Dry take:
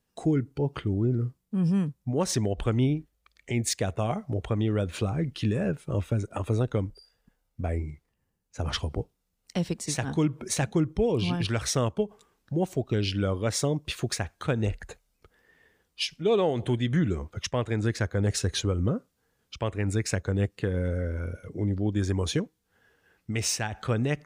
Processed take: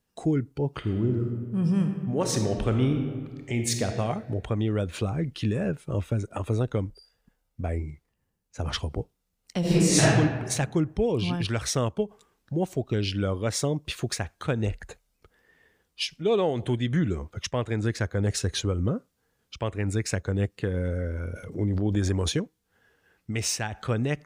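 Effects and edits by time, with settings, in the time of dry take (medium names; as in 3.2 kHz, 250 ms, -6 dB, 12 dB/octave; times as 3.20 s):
0.77–3.86 s: reverb throw, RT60 1.7 s, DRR 4 dB
9.60–10.06 s: reverb throw, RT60 1.3 s, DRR -12 dB
21.33–22.32 s: transient shaper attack +3 dB, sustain +9 dB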